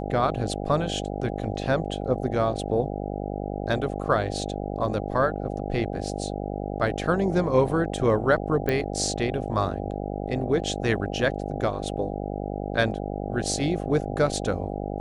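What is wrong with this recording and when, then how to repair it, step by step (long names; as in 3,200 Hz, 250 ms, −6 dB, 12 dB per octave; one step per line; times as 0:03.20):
mains buzz 50 Hz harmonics 16 −31 dBFS
0:08.69: click −13 dBFS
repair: click removal
hum removal 50 Hz, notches 16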